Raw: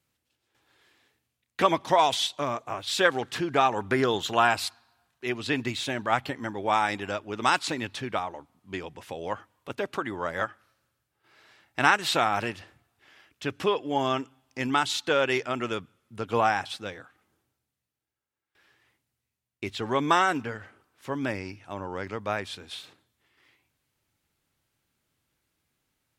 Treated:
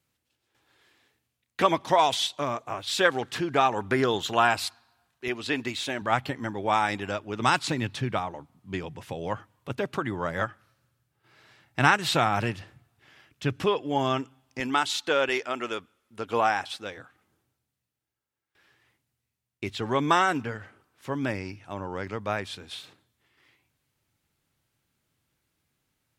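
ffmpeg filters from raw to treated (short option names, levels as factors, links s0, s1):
-af "asetnsamples=n=441:p=0,asendcmd='5.28 equalizer g -6;6.01 equalizer g 4.5;7.4 equalizer g 10.5;13.64 equalizer g 4.5;14.6 equalizer g -6.5;15.29 equalizer g -14;16.18 equalizer g -7;16.97 equalizer g 3.5',equalizer=f=130:t=o:w=1.3:g=1"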